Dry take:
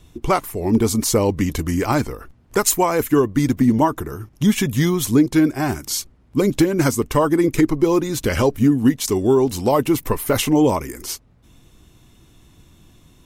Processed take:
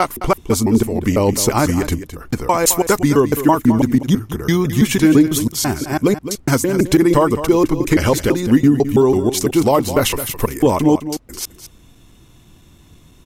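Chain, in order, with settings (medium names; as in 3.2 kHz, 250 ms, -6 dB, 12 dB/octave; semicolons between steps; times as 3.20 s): slices played last to first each 166 ms, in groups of 3; on a send: delay 212 ms -12 dB; on the sum: trim +3 dB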